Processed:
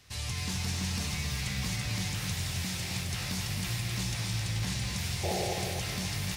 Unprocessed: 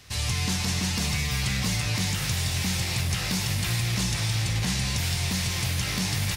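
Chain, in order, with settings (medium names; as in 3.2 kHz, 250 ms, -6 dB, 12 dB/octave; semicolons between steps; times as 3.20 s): painted sound noise, 5.23–5.54 s, 340–860 Hz -26 dBFS; bit-crushed delay 264 ms, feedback 35%, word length 8-bit, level -5 dB; trim -8 dB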